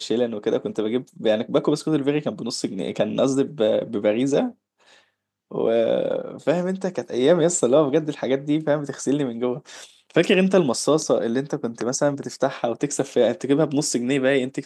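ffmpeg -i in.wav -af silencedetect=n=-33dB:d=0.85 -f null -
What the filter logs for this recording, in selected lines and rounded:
silence_start: 4.50
silence_end: 5.52 | silence_duration: 1.01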